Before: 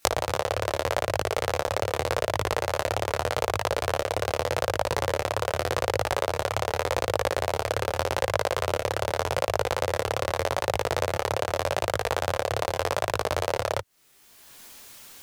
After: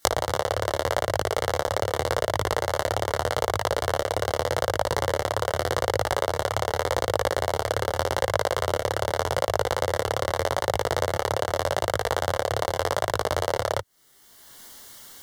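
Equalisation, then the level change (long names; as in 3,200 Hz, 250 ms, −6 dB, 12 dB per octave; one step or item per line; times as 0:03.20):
Butterworth band-reject 2,500 Hz, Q 4.5
+1.5 dB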